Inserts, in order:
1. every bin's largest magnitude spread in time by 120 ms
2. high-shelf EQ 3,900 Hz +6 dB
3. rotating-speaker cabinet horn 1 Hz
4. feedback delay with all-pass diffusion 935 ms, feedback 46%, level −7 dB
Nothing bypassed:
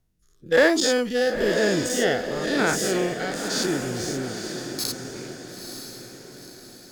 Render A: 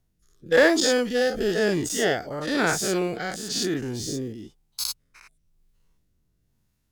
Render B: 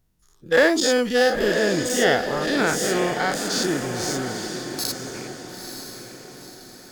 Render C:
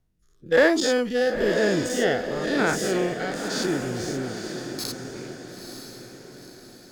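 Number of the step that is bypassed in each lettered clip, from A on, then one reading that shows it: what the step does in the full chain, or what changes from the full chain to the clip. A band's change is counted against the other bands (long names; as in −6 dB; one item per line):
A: 4, echo-to-direct ratio −6.0 dB to none audible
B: 3, 1 kHz band +3.0 dB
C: 2, 8 kHz band −4.5 dB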